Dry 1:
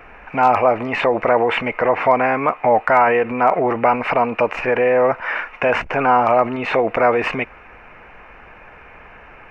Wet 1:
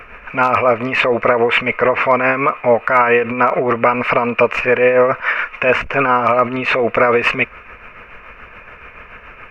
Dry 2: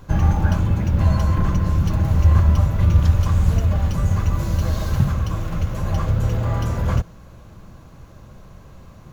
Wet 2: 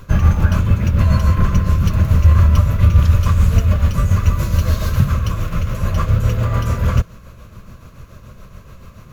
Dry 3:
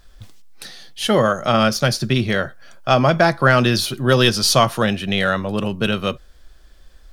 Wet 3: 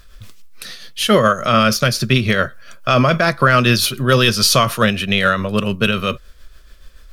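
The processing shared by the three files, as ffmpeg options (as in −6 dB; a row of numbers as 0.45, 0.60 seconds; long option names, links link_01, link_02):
-af "tremolo=f=7:d=0.48,equalizer=frequency=160:width_type=o:width=0.33:gain=-3,equalizer=frequency=315:width_type=o:width=0.33:gain=-7,equalizer=frequency=800:width_type=o:width=0.33:gain=-12,equalizer=frequency=1250:width_type=o:width=0.33:gain=4,equalizer=frequency=2500:width_type=o:width=0.33:gain=4,equalizer=frequency=12500:width_type=o:width=0.33:gain=5,alimiter=level_in=7.5dB:limit=-1dB:release=50:level=0:latency=1,volume=-1dB"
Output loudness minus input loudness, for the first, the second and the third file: +2.5, +4.0, +2.5 LU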